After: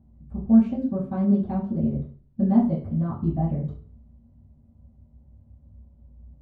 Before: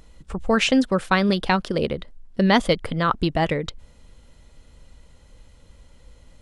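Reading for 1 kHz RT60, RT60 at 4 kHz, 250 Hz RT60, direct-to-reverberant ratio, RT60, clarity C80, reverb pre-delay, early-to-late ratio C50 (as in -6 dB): 0.40 s, no reading, 0.50 s, -11.0 dB, 0.45 s, 11.5 dB, 3 ms, 6.0 dB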